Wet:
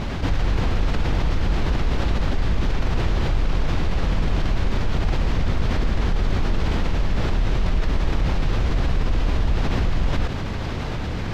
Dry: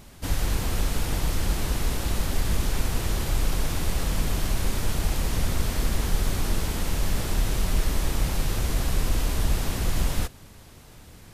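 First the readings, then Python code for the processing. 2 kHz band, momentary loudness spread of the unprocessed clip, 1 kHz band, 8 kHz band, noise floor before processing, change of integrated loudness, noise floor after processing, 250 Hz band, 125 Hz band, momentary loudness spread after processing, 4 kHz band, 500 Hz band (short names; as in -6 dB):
+3.5 dB, 1 LU, +5.0 dB, -12.0 dB, -48 dBFS, +3.5 dB, -26 dBFS, +5.5 dB, +5.0 dB, 1 LU, 0.0 dB, +5.0 dB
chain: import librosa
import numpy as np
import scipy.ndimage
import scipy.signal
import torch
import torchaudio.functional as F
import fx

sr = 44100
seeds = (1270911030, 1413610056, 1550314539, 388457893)

y = fx.air_absorb(x, sr, metres=210.0)
y = fx.env_flatten(y, sr, amount_pct=70)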